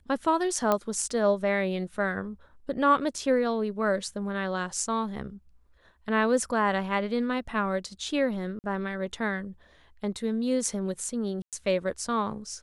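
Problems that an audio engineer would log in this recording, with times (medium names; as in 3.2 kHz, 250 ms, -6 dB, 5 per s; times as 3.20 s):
0.72 s: pop -11 dBFS
8.59–8.64 s: dropout 49 ms
11.42–11.53 s: dropout 107 ms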